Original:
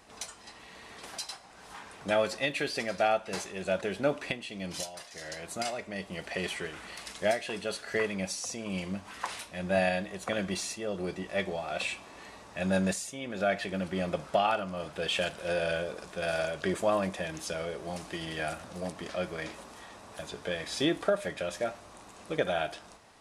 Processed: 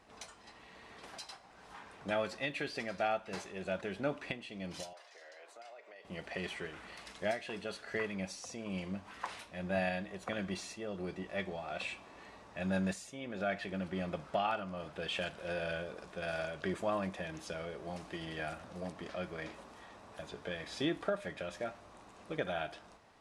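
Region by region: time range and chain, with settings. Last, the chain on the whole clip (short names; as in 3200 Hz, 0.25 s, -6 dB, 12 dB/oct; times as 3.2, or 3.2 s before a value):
4.93–6.05 HPF 440 Hz 24 dB/oct + high shelf 8800 Hz -11.5 dB + compressor 4:1, threshold -46 dBFS
whole clip: LPF 3200 Hz 6 dB/oct; dynamic EQ 520 Hz, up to -4 dB, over -37 dBFS, Q 1.4; gain -4.5 dB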